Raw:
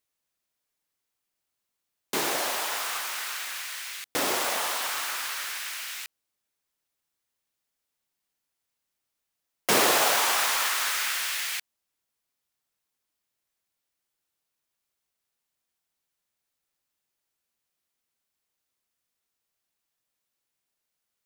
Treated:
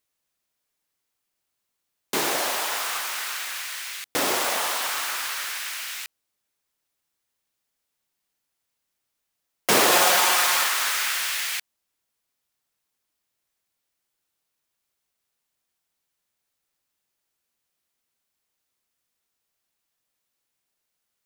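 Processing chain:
0:09.91–0:10.64: comb filter 5.6 ms, depth 63%
level +3 dB

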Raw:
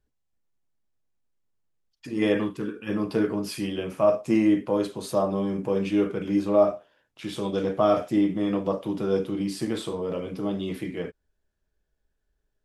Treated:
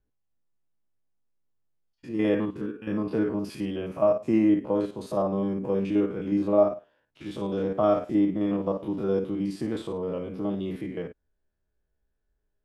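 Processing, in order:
spectrum averaged block by block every 50 ms
high-shelf EQ 2,700 Hz −10.5 dB

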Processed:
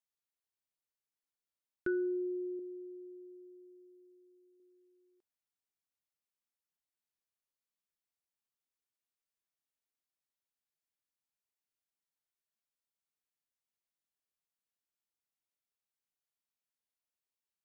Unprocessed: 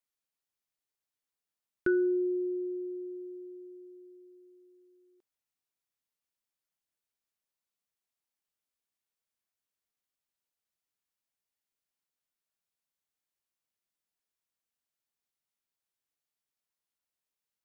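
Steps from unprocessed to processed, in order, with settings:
0:02.59–0:04.60: parametric band 1,300 Hz −15 dB 1.9 octaves
level −6.5 dB

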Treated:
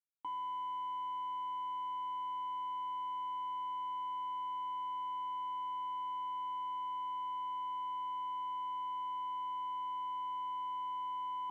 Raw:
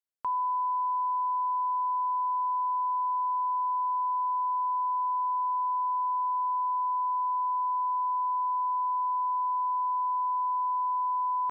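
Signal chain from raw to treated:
running median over 25 samples
harmonic generator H 2 −31 dB, 6 −22 dB, 8 −28 dB, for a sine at −29 dBFS
formant filter u
level +4.5 dB

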